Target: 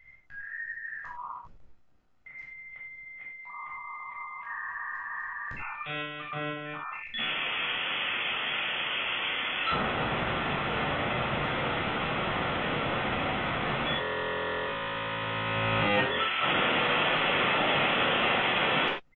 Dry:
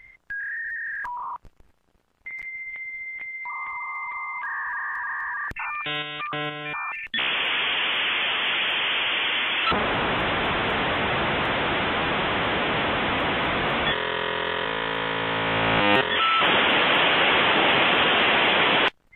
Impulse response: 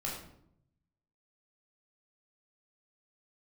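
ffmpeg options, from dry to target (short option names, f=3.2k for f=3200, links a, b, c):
-filter_complex "[1:a]atrim=start_sample=2205,afade=t=out:st=0.16:d=0.01,atrim=end_sample=7497[a];[0:a][a]afir=irnorm=-1:irlink=0,aresample=16000,aresample=44100,volume=-8.5dB"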